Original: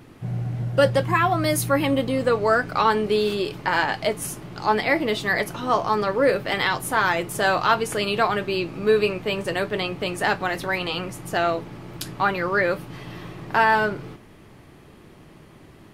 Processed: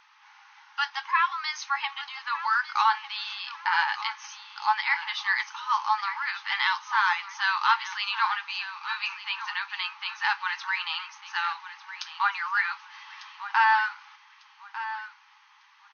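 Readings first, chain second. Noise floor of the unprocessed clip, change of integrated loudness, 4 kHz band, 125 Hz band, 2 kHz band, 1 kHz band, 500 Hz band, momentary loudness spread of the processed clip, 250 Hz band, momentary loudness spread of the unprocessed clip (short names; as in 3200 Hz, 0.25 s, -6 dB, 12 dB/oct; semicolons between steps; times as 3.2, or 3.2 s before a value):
-48 dBFS, -4.5 dB, -2.0 dB, under -40 dB, -2.0 dB, -2.5 dB, under -40 dB, 14 LU, under -40 dB, 10 LU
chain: brick-wall FIR band-pass 800–6500 Hz; on a send: feedback echo 1.199 s, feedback 29%, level -13 dB; on the sum: gain -2 dB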